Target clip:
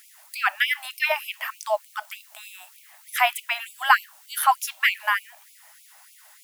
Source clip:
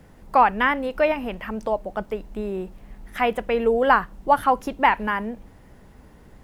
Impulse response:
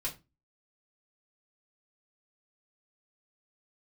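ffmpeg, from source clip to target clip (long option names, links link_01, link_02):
-af "crystalizer=i=5:c=0,afftfilt=real='re*gte(b*sr/1024,560*pow(2200/560,0.5+0.5*sin(2*PI*3.3*pts/sr)))':imag='im*gte(b*sr/1024,560*pow(2200/560,0.5+0.5*sin(2*PI*3.3*pts/sr)))':win_size=1024:overlap=0.75"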